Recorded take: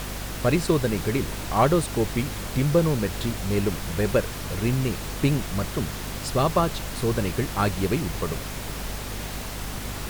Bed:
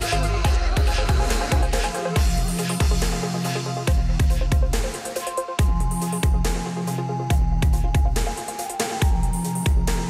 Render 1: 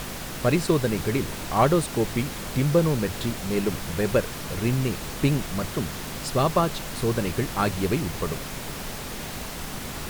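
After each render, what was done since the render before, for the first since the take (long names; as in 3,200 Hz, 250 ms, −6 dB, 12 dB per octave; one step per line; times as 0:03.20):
mains-hum notches 50/100 Hz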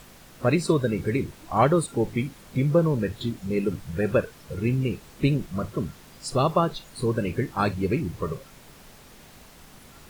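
noise reduction from a noise print 15 dB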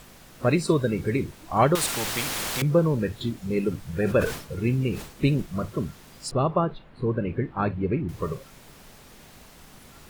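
0:01.75–0:02.62: every bin compressed towards the loudest bin 4 to 1
0:03.94–0:05.42: level that may fall only so fast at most 100 dB per second
0:06.31–0:08.09: high-frequency loss of the air 490 metres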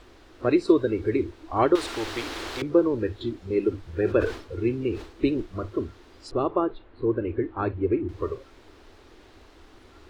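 drawn EQ curve 100 Hz 0 dB, 160 Hz −20 dB, 330 Hz +7 dB, 570 Hz −3 dB, 1,400 Hz −2 dB, 2,400 Hz −5 dB, 4,000 Hz −4 dB, 13,000 Hz −23 dB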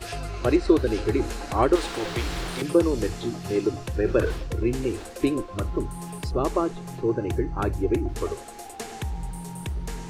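mix in bed −11.5 dB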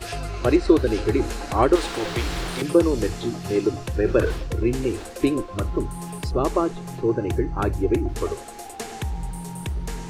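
level +2.5 dB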